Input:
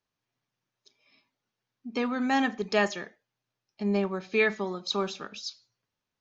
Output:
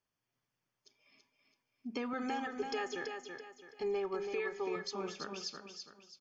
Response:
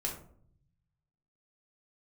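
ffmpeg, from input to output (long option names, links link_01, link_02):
-filter_complex "[0:a]asettb=1/sr,asplit=3[link_01][link_02][link_03];[link_01]atrim=end=2.134[link_04];[link_02]atrim=start=2.13:end=4.76,asetpts=PTS-STARTPTS,afade=type=in:duration=0.004:curve=qsin,afade=type=out:start_time=2.626:duration=0.004:curve=qsin,aecho=1:1:2.4:0.95,atrim=end_sample=115983[link_05];[link_03]atrim=start=4.756[link_06];[link_04][link_05]acrossfade=duration=0.004:curve1=hsin:curve2=qsin[link_07];[link_07][link_06]acrossfade=duration=0.004:curve1=qsin:curve2=hsin,acompressor=threshold=-30dB:ratio=4,alimiter=level_in=1dB:limit=-24dB:level=0:latency=1:release=483,volume=-1dB,asuperstop=centerf=3900:order=4:qfactor=7,aecho=1:1:331|662|993|1324:0.501|0.175|0.0614|0.0215,volume=-3dB"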